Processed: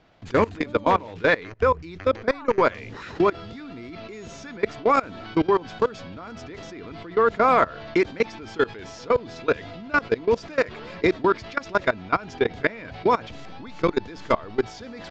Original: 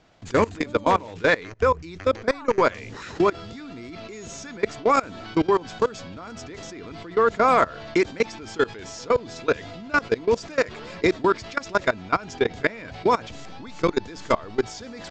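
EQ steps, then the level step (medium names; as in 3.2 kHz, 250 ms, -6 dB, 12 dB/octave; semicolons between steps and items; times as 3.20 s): low-pass 4.3 kHz 12 dB/octave; 0.0 dB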